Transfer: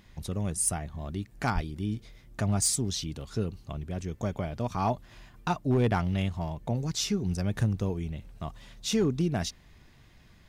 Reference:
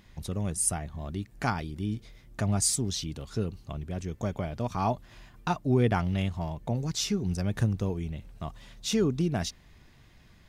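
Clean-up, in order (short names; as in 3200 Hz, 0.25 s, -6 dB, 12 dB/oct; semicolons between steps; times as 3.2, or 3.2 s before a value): clip repair -18.5 dBFS; 1.54–1.66 HPF 140 Hz 24 dB/oct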